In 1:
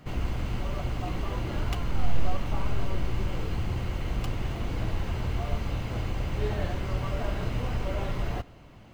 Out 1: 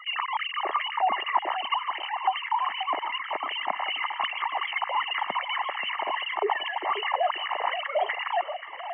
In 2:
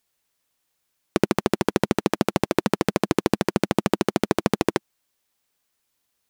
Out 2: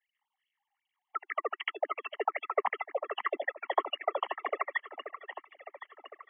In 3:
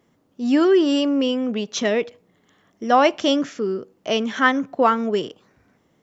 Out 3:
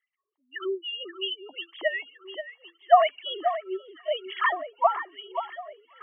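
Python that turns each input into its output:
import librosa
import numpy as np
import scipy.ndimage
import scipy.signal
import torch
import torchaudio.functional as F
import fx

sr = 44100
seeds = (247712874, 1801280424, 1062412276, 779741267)

p1 = fx.sine_speech(x, sr)
p2 = fx.spec_gate(p1, sr, threshold_db=-30, keep='strong')
p3 = p2 + 0.81 * np.pad(p2, (int(1.0 * sr / 1000.0), 0))[:len(p2)]
p4 = fx.rider(p3, sr, range_db=4, speed_s=2.0)
p5 = fx.filter_lfo_highpass(p4, sr, shape='sine', hz=2.6, low_hz=520.0, high_hz=2900.0, q=3.6)
p6 = p5 + fx.echo_alternate(p5, sr, ms=531, hz=2000.0, feedback_pct=67, wet_db=-9.5, dry=0)
y = p6 * 10.0 ** (-8.5 / 20.0)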